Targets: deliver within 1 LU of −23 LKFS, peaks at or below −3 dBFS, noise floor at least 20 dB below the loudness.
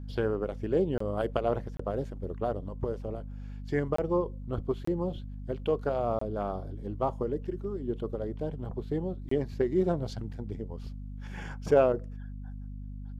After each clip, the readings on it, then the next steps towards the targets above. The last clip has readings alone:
number of dropouts 6; longest dropout 24 ms; mains hum 50 Hz; hum harmonics up to 250 Hz; level of the hum −37 dBFS; integrated loudness −32.0 LKFS; sample peak −9.5 dBFS; target loudness −23.0 LKFS
→ repair the gap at 0:00.98/0:01.77/0:03.96/0:04.85/0:06.19/0:09.29, 24 ms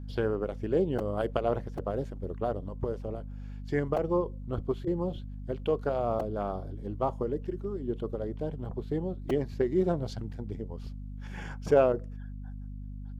number of dropouts 0; mains hum 50 Hz; hum harmonics up to 250 Hz; level of the hum −37 dBFS
→ hum removal 50 Hz, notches 5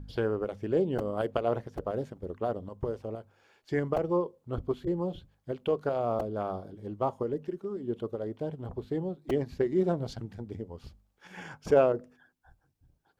mains hum none found; integrated loudness −32.0 LKFS; sample peak −9.5 dBFS; target loudness −23.0 LKFS
→ level +9 dB
brickwall limiter −3 dBFS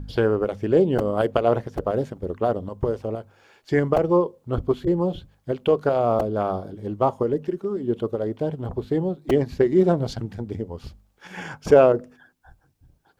integrated loudness −23.0 LKFS; sample peak −3.0 dBFS; background noise floor −64 dBFS

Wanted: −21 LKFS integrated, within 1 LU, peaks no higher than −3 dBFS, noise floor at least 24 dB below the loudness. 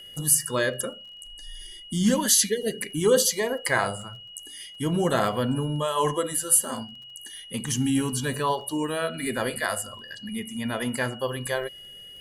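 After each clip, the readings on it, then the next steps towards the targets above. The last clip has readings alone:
crackle rate 21 per second; interfering tone 2,900 Hz; level of the tone −42 dBFS; integrated loudness −25.0 LKFS; sample peak −4.5 dBFS; target loudness −21.0 LKFS
→ click removal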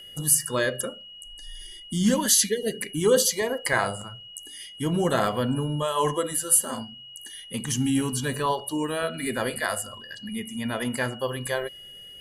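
crackle rate 0.33 per second; interfering tone 2,900 Hz; level of the tone −42 dBFS
→ notch filter 2,900 Hz, Q 30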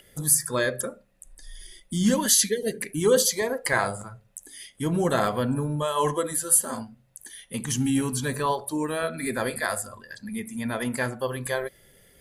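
interfering tone none found; integrated loudness −25.0 LKFS; sample peak −4.5 dBFS; target loudness −21.0 LKFS
→ level +4 dB
brickwall limiter −3 dBFS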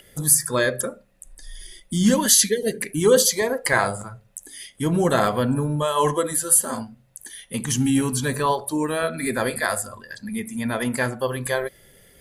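integrated loudness −21.0 LKFS; sample peak −3.0 dBFS; background noise floor −56 dBFS

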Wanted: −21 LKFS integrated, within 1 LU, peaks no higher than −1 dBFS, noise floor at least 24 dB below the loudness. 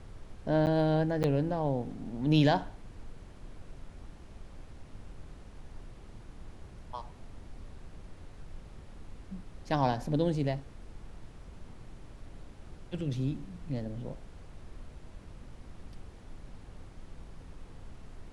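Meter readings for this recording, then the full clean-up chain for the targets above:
number of dropouts 2; longest dropout 9.2 ms; background noise floor −51 dBFS; target noise floor −55 dBFS; integrated loudness −31.0 LKFS; sample peak −12.5 dBFS; target loudness −21.0 LKFS
→ repair the gap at 0:00.66/0:01.23, 9.2 ms
noise reduction from a noise print 6 dB
level +10 dB

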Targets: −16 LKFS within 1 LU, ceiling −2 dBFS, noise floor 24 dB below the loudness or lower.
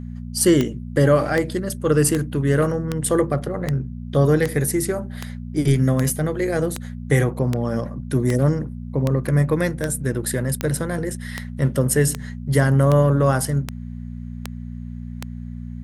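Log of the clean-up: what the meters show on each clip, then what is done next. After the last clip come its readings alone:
number of clicks 20; mains hum 60 Hz; hum harmonics up to 240 Hz; level of the hum −29 dBFS; integrated loudness −21.0 LKFS; sample peak −4.0 dBFS; target loudness −16.0 LKFS
→ click removal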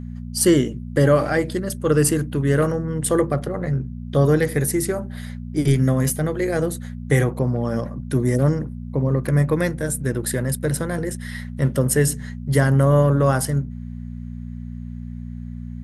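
number of clicks 0; mains hum 60 Hz; hum harmonics up to 240 Hz; level of the hum −29 dBFS
→ hum removal 60 Hz, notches 4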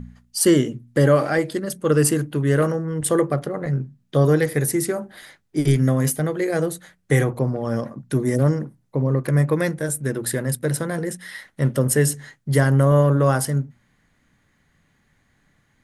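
mains hum none found; integrated loudness −21.0 LKFS; sample peak −4.5 dBFS; target loudness −16.0 LKFS
→ level +5 dB
brickwall limiter −2 dBFS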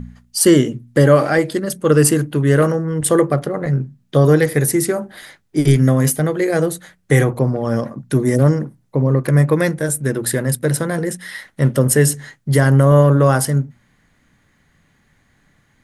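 integrated loudness −16.0 LKFS; sample peak −2.0 dBFS; background noise floor −60 dBFS

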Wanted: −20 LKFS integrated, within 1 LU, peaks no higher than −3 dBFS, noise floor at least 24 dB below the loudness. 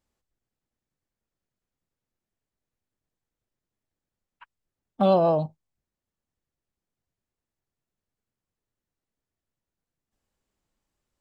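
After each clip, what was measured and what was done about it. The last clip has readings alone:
integrated loudness −22.5 LKFS; sample peak −9.0 dBFS; target loudness −20.0 LKFS
→ level +2.5 dB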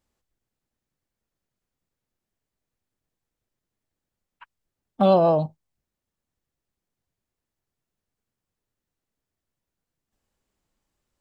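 integrated loudness −20.0 LKFS; sample peak −6.5 dBFS; background noise floor −87 dBFS

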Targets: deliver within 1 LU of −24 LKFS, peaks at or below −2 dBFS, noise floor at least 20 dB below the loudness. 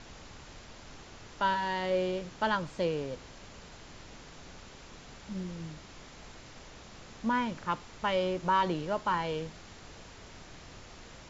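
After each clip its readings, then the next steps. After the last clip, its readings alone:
background noise floor −51 dBFS; target noise floor −53 dBFS; integrated loudness −32.5 LKFS; sample peak −15.5 dBFS; target loudness −24.0 LKFS
→ noise reduction from a noise print 6 dB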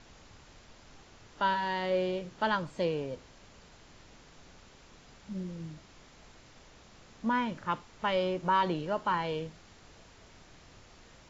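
background noise floor −57 dBFS; integrated loudness −32.0 LKFS; sample peak −15.5 dBFS; target loudness −24.0 LKFS
→ level +8 dB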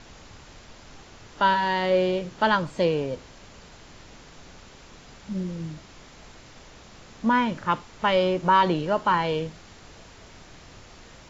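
integrated loudness −24.0 LKFS; sample peak −7.5 dBFS; background noise floor −49 dBFS

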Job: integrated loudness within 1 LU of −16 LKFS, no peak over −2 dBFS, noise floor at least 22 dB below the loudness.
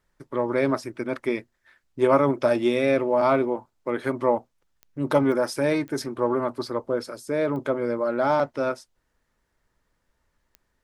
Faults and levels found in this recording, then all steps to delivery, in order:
number of clicks 5; integrated loudness −24.5 LKFS; sample peak −8.0 dBFS; target loudness −16.0 LKFS
→ click removal
level +8.5 dB
brickwall limiter −2 dBFS

